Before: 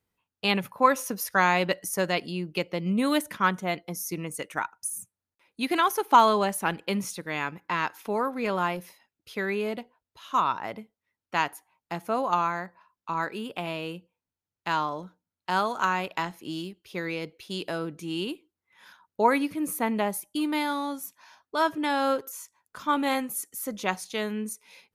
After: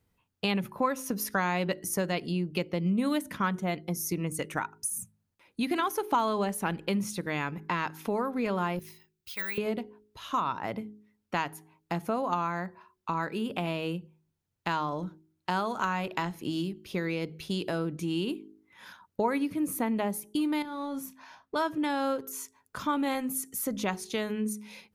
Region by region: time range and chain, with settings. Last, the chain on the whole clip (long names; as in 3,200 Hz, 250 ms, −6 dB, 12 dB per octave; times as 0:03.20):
0:08.79–0:09.58: guitar amp tone stack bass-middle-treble 10-0-10 + bad sample-rate conversion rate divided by 2×, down filtered, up zero stuff
0:20.62–0:21.56: high-shelf EQ 4,600 Hz −9 dB + downward compressor 12 to 1, threshold −34 dBFS + double-tracking delay 30 ms −11 dB
whole clip: low-shelf EQ 300 Hz +9.5 dB; hum removal 52.68 Hz, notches 8; downward compressor 2.5 to 1, threshold −33 dBFS; level +3 dB